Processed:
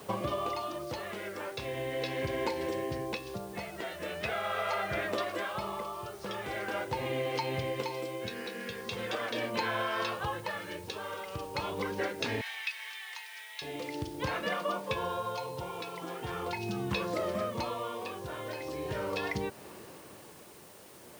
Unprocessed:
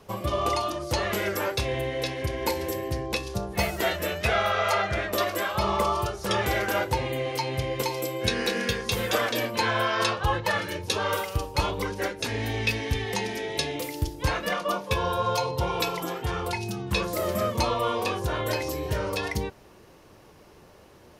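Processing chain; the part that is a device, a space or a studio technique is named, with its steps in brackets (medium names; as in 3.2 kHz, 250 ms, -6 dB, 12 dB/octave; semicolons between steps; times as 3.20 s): medium wave at night (band-pass 130–4200 Hz; compression, threshold -35 dBFS, peak gain reduction 14 dB; tremolo 0.41 Hz, depth 57%; whistle 9 kHz -69 dBFS; white noise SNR 21 dB); 12.41–13.62 s: high-pass 1.1 kHz 24 dB/octave; trim +5 dB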